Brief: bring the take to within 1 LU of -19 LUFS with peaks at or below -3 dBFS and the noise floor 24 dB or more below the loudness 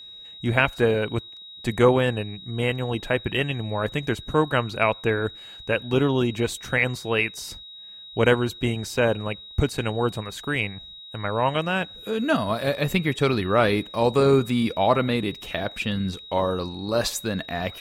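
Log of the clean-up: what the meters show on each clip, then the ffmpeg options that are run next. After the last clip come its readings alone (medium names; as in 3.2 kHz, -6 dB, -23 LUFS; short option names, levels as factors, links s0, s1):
steady tone 3.8 kHz; tone level -40 dBFS; loudness -24.0 LUFS; peak level -4.0 dBFS; loudness target -19.0 LUFS
-> -af "bandreject=f=3800:w=30"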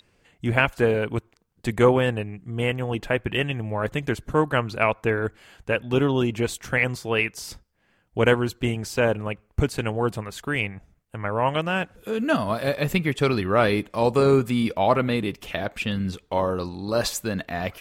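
steady tone not found; loudness -24.5 LUFS; peak level -4.0 dBFS; loudness target -19.0 LUFS
-> -af "volume=1.88,alimiter=limit=0.708:level=0:latency=1"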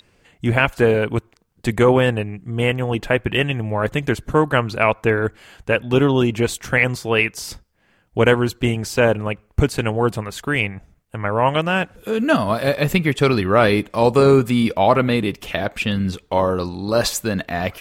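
loudness -19.0 LUFS; peak level -3.0 dBFS; noise floor -60 dBFS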